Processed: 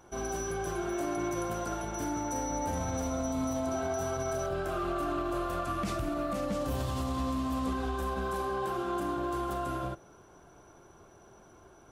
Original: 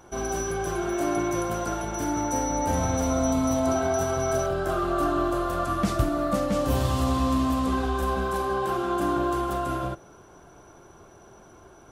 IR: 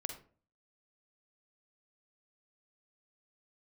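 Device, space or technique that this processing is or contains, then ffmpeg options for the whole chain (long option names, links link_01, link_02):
limiter into clipper: -filter_complex "[0:a]alimiter=limit=-18.5dB:level=0:latency=1:release=39,asoftclip=type=hard:threshold=-20dB,asettb=1/sr,asplit=3[link_01][link_02][link_03];[link_01]atrim=end=4.544[link_04];[link_02]atrim=start=4.54:end=6.45,asetpts=PTS-STARTPTS,afade=type=in:duration=0.004:curve=qsin,afade=type=out:start_time=1.906:duration=0.004:curve=qsin,equalizer=frequency=2500:width_type=o:width=0.44:gain=5.5[link_05];[link_03]atrim=start=6.446[link_06];[link_04][link_05]acrossfade=duration=0.004:curve1=hsin:curve2=qsin[link_07];[link_07][link_06]acrossfade=duration=0.004:curve1=qsin:curve2=hsin,volume=-5.5dB"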